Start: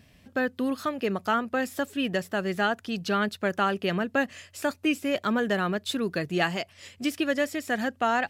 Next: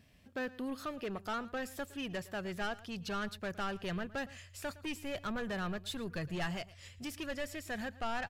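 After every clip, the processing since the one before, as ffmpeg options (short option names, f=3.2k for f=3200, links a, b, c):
-af "asoftclip=type=tanh:threshold=-24dB,asubboost=boost=8.5:cutoff=93,aecho=1:1:113:0.112,volume=-7.5dB"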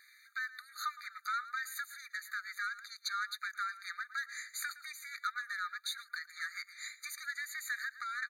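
-af "acompressor=threshold=-43dB:ratio=6,afftfilt=real='re*eq(mod(floor(b*sr/1024/1200),2),1)':imag='im*eq(mod(floor(b*sr/1024/1200),2),1)':win_size=1024:overlap=0.75,volume=13dB"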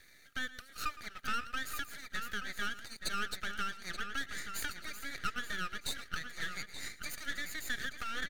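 -filter_complex "[0:a]aeval=exprs='max(val(0),0)':c=same,asplit=2[a][b];[b]adelay=878,lowpass=f=4.7k:p=1,volume=-8dB,asplit=2[c][d];[d]adelay=878,lowpass=f=4.7k:p=1,volume=0.3,asplit=2[e][f];[f]adelay=878,lowpass=f=4.7k:p=1,volume=0.3,asplit=2[g][h];[h]adelay=878,lowpass=f=4.7k:p=1,volume=0.3[i];[a][c][e][g][i]amix=inputs=5:normalize=0,volume=4.5dB"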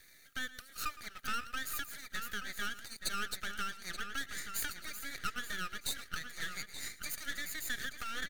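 -af "highshelf=f=7k:g=9.5,volume=-2dB"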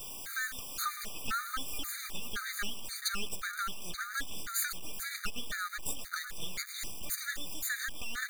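-af "aeval=exprs='val(0)+0.5*0.0126*sgn(val(0))':c=same,acrusher=bits=7:mix=0:aa=0.5,afftfilt=real='re*gt(sin(2*PI*1.9*pts/sr)*(1-2*mod(floor(b*sr/1024/1200),2)),0)':imag='im*gt(sin(2*PI*1.9*pts/sr)*(1-2*mod(floor(b*sr/1024/1200),2)),0)':win_size=1024:overlap=0.75,volume=4dB"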